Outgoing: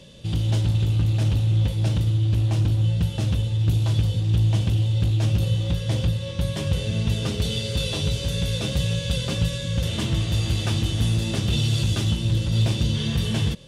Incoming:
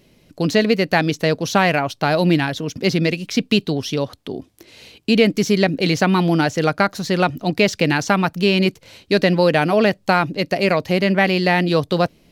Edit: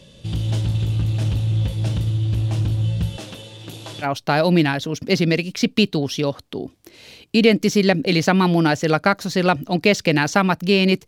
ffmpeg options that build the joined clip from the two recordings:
ffmpeg -i cue0.wav -i cue1.wav -filter_complex "[0:a]asettb=1/sr,asplit=3[link_01][link_02][link_03];[link_01]atrim=end=3.174[link_04];[link_02]atrim=start=3.17:end=4.07,asetpts=PTS-STARTPTS,afade=type=in:duration=0.004:curve=qsin,afade=type=out:start_time=0.896:duration=0.004:curve=qsin,highpass=340[link_05];[link_03]atrim=start=4.066[link_06];[link_04][link_05]acrossfade=duration=0.004:curve1=hsin:curve2=qsin[link_07];[link_07][link_06]acrossfade=duration=0.004:curve1=qsin:curve2=hsin,apad=whole_dur=11.07,atrim=end=11.07,atrim=end=4.07,asetpts=PTS-STARTPTS[link_08];[1:a]atrim=start=1.75:end=8.81,asetpts=PTS-STARTPTS[link_09];[link_08][link_09]acrossfade=duration=0.06:curve1=tri:curve2=tri" out.wav

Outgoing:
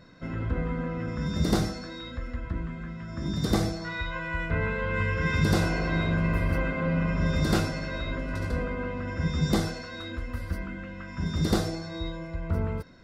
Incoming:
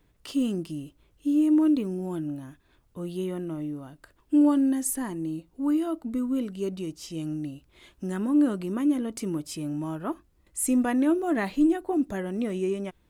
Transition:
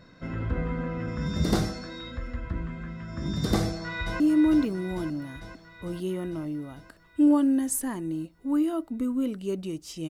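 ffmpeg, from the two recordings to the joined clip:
ffmpeg -i cue0.wav -i cue1.wav -filter_complex "[0:a]apad=whole_dur=10.09,atrim=end=10.09,atrim=end=4.202[link_01];[1:a]atrim=start=1.338:end=7.23[link_02];[link_01][link_02]acrossfade=duration=0.004:curve1=hsin:curve2=hsin,asplit=2[link_03][link_04];[link_04]afade=type=in:start_time=3.61:duration=0.01,afade=type=out:start_time=4.2:duration=0.01,aecho=0:1:450|900|1350|1800|2250|2700|3150|3600|4050|4500|4950:0.446684|0.312679|0.218875|0.153212|0.107249|0.0750741|0.0525519|0.0367863|0.0257504|0.0180253|0.0126177[link_05];[link_03][link_05]amix=inputs=2:normalize=0" out.wav

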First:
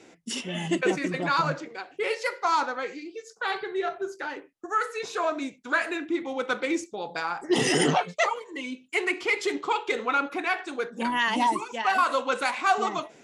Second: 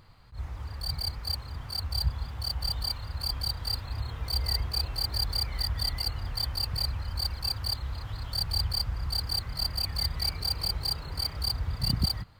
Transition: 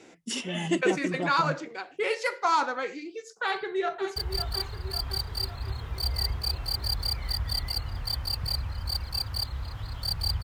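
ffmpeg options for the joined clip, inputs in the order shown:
ffmpeg -i cue0.wav -i cue1.wav -filter_complex "[0:a]apad=whole_dur=10.43,atrim=end=10.43,atrim=end=4.162[link_01];[1:a]atrim=start=2.458:end=8.73[link_02];[link_01][link_02]acrossfade=duration=0.004:curve1=hsin:curve2=hsin,asplit=2[link_03][link_04];[link_04]afade=type=in:start_time=3.43:duration=0.01,afade=type=out:start_time=4.16:duration=0.01,aecho=0:1:550|1100|1650|2200|2750|3300|3850:0.298538|0.179123|0.107474|0.0644843|0.0386906|0.0232143|0.0139286[link_05];[link_03][link_05]amix=inputs=2:normalize=0" out.wav

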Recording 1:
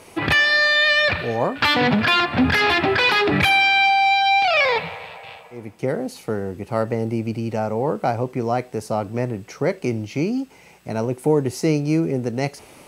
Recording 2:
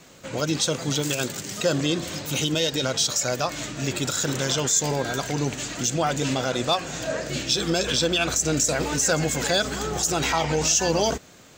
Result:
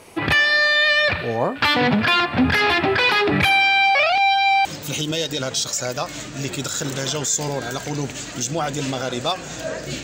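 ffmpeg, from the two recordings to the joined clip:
ffmpeg -i cue0.wav -i cue1.wav -filter_complex "[0:a]apad=whole_dur=10.03,atrim=end=10.03,asplit=2[link_01][link_02];[link_01]atrim=end=3.952[link_03];[link_02]atrim=start=3.948:end=4.652,asetpts=PTS-STARTPTS,areverse[link_04];[1:a]atrim=start=2.078:end=7.46[link_05];[link_03][link_04]acrossfade=duration=0.004:curve1=hsin:curve2=hsin[link_06];[link_06][link_05]acrossfade=duration=0.004:curve1=hsin:curve2=hsin" out.wav

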